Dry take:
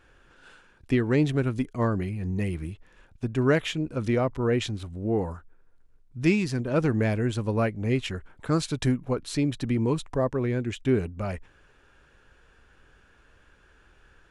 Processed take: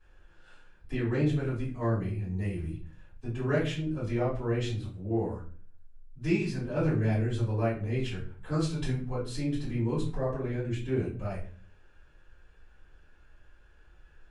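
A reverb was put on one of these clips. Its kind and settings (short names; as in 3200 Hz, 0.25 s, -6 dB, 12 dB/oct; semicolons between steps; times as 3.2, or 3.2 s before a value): shoebox room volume 32 m³, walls mixed, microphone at 2.6 m; gain -19.5 dB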